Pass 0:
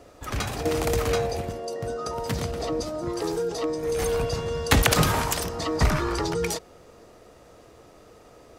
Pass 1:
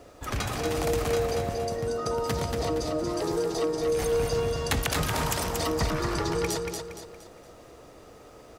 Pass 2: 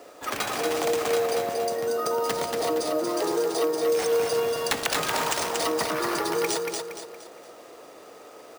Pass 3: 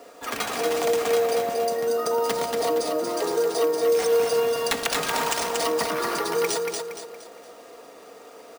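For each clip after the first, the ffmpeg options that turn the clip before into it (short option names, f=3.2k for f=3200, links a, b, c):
-filter_complex "[0:a]acompressor=threshold=-25dB:ratio=6,acrusher=bits=11:mix=0:aa=0.000001,asplit=2[a][b];[b]aecho=0:1:233|466|699|932|1165:0.596|0.226|0.086|0.0327|0.0124[c];[a][c]amix=inputs=2:normalize=0"
-filter_complex "[0:a]highpass=350,asplit=2[a][b];[b]alimiter=limit=-21.5dB:level=0:latency=1:release=321,volume=-2.5dB[c];[a][c]amix=inputs=2:normalize=0,acrusher=samples=3:mix=1:aa=0.000001"
-af "aecho=1:1:4.3:0.41"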